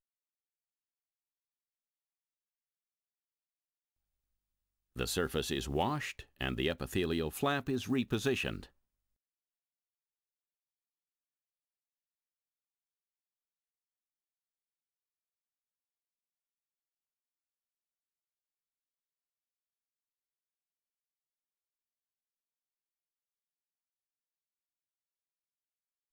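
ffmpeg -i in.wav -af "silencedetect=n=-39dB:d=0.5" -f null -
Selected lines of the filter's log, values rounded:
silence_start: 0.00
silence_end: 4.96 | silence_duration: 4.96
silence_start: 8.63
silence_end: 26.13 | silence_duration: 17.49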